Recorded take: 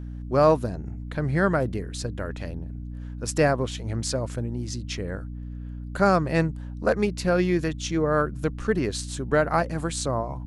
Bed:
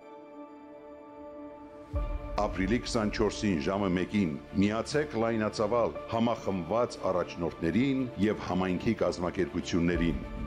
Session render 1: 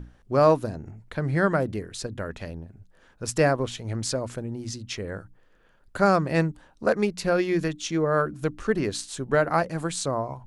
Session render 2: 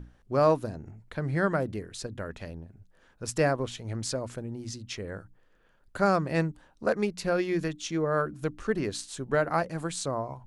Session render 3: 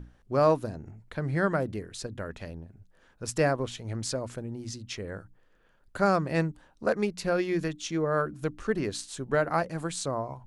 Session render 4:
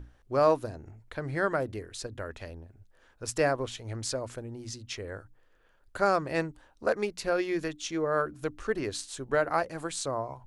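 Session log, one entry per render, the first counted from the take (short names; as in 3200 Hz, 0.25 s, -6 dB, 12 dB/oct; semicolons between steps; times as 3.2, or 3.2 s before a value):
notches 60/120/180/240/300 Hz
gain -4 dB
nothing audible
bell 180 Hz -10.5 dB 0.79 oct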